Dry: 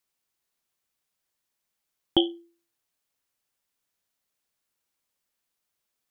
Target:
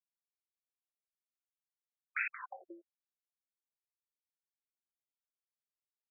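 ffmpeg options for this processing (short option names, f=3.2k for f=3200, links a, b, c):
-filter_complex "[0:a]acrusher=bits=4:mix=0:aa=0.000001,asplit=2[a][b];[b]aecho=0:1:179|358|537:0.282|0.0761|0.0205[c];[a][c]amix=inputs=2:normalize=0,acrusher=bits=3:mode=log:mix=0:aa=0.000001,afftfilt=real='re*between(b*sr/1024,440*pow(1900/440,0.5+0.5*sin(2*PI*1*pts/sr))/1.41,440*pow(1900/440,0.5+0.5*sin(2*PI*1*pts/sr))*1.41)':imag='im*between(b*sr/1024,440*pow(1900/440,0.5+0.5*sin(2*PI*1*pts/sr))/1.41,440*pow(1900/440,0.5+0.5*sin(2*PI*1*pts/sr))*1.41)':win_size=1024:overlap=0.75,volume=7.5dB"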